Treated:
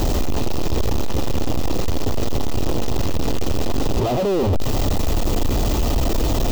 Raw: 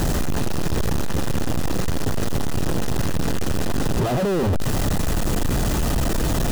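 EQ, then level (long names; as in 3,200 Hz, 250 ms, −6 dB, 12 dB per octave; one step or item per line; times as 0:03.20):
graphic EQ with 15 bands 160 Hz −10 dB, 1,600 Hz −11 dB, 10,000 Hz −12 dB
+3.5 dB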